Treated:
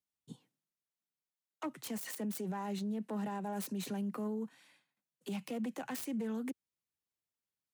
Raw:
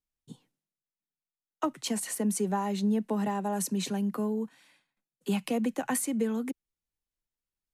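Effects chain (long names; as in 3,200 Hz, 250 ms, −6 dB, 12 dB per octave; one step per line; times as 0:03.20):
phase distortion by the signal itself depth 0.13 ms
high-pass filter 81 Hz 24 dB per octave
brickwall limiter −28.5 dBFS, peak gain reduction 9.5 dB
level −3 dB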